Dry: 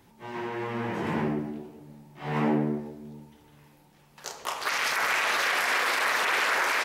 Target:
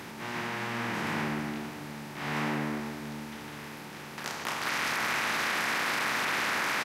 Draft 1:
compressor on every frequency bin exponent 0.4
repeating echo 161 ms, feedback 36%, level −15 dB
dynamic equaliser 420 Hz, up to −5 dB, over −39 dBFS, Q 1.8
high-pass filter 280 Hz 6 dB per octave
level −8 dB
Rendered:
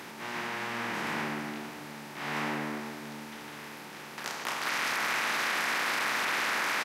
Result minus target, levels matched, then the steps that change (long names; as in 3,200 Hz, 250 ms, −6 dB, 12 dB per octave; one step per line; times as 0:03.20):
250 Hz band −3.5 dB
remove: high-pass filter 280 Hz 6 dB per octave